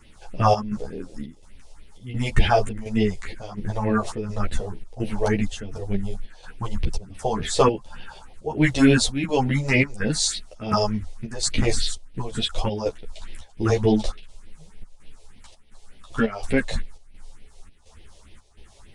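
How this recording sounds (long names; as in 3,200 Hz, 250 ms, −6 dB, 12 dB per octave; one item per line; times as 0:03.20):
phaser sweep stages 4, 3.4 Hz, lowest notch 220–1,300 Hz
chopped level 1.4 Hz, depth 65%, duty 75%
a shimmering, thickened sound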